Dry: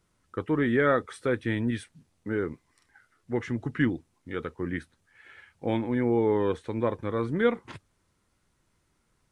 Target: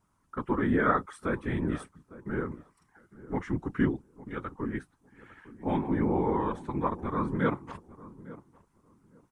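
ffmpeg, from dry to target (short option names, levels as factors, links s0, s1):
-filter_complex "[0:a]equalizer=f=250:t=o:w=1:g=4,equalizer=f=500:t=o:w=1:g=-8,equalizer=f=1000:t=o:w=1:g=10,equalizer=f=2000:t=o:w=1:g=-4,equalizer=f=4000:t=o:w=1:g=-7,afftfilt=real='hypot(re,im)*cos(2*PI*random(0))':imag='hypot(re,im)*sin(2*PI*random(1))':win_size=512:overlap=0.75,asplit=2[s0][s1];[s1]adelay=855,lowpass=f=1000:p=1,volume=0.141,asplit=2[s2][s3];[s3]adelay=855,lowpass=f=1000:p=1,volume=0.2[s4];[s0][s2][s4]amix=inputs=3:normalize=0,volume=1.5"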